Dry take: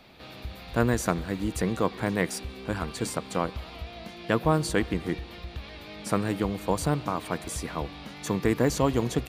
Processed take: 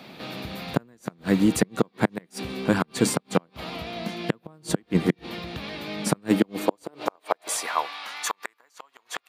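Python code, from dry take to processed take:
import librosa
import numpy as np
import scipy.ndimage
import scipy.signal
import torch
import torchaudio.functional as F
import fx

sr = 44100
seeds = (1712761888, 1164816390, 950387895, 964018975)

y = fx.gate_flip(x, sr, shuts_db=-15.0, range_db=-38)
y = fx.filter_sweep_highpass(y, sr, from_hz=170.0, to_hz=1100.0, start_s=6.17, end_s=7.93, q=1.5)
y = y * 10.0 ** (8.0 / 20.0)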